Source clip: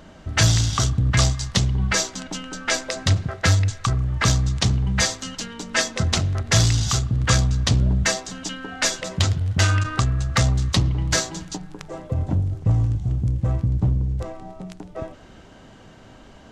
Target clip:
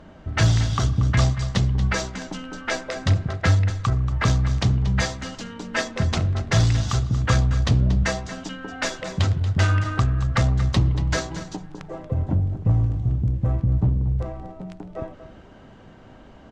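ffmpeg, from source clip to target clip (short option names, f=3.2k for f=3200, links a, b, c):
-af "lowpass=f=1.9k:p=1,aecho=1:1:233:0.224" -ar 48000 -c:a libopus -b:a 48k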